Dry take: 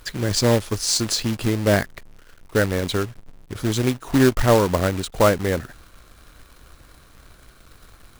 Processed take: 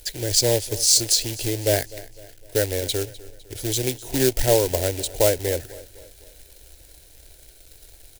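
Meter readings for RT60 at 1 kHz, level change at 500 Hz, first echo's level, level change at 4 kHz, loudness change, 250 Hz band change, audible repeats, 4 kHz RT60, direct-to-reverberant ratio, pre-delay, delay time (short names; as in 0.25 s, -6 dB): none, -1.5 dB, -19.0 dB, +2.5 dB, -0.5 dB, -8.0 dB, 3, none, none, none, 0.253 s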